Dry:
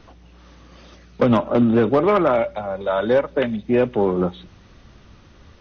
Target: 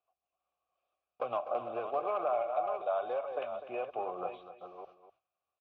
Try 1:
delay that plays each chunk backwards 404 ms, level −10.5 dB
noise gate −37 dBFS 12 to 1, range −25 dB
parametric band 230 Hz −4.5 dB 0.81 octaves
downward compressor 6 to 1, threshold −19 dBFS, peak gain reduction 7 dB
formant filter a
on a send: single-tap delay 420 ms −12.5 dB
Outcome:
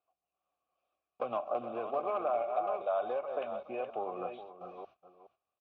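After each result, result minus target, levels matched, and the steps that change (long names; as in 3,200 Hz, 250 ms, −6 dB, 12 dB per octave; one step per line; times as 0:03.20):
echo 171 ms late; 250 Hz band +3.0 dB
change: single-tap delay 249 ms −12.5 dB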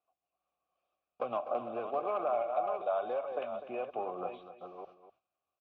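250 Hz band +3.0 dB
change: parametric band 230 Hz −13.5 dB 0.81 octaves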